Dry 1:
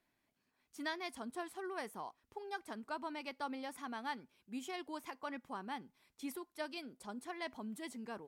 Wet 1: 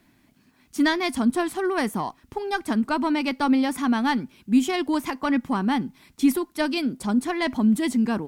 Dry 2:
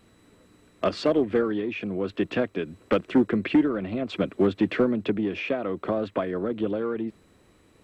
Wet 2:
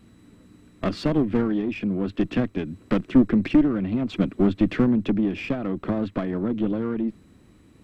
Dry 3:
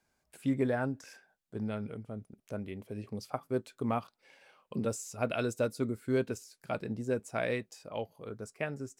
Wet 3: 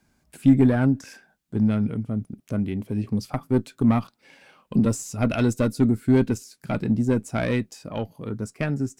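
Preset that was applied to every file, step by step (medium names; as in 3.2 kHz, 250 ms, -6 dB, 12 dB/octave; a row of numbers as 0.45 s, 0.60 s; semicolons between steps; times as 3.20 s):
single-diode clipper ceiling -26 dBFS; resonant low shelf 350 Hz +7 dB, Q 1.5; normalise loudness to -24 LUFS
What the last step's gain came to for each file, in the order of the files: +18.0 dB, -0.5 dB, +8.5 dB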